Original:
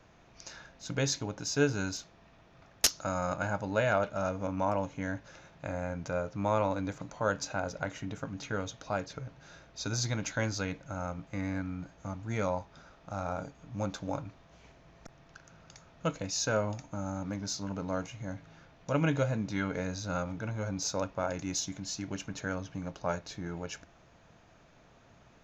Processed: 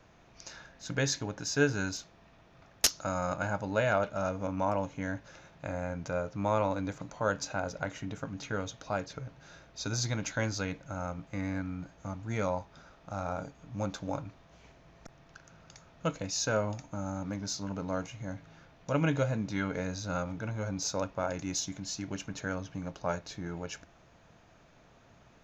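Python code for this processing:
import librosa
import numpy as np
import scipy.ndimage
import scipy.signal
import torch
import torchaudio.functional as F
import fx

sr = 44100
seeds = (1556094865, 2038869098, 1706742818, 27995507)

y = fx.peak_eq(x, sr, hz=1700.0, db=6.5, octaves=0.27, at=(0.7, 1.89))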